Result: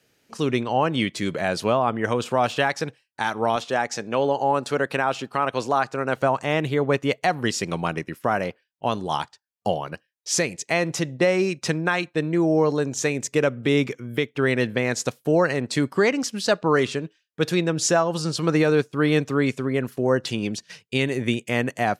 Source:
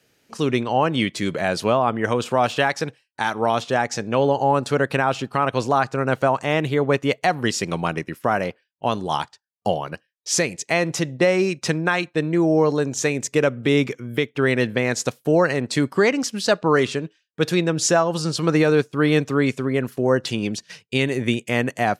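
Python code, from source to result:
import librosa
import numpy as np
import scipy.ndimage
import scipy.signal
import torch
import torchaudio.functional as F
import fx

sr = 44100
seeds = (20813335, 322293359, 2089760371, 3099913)

y = fx.highpass(x, sr, hz=240.0, slope=6, at=(3.56, 6.16))
y = y * librosa.db_to_amplitude(-2.0)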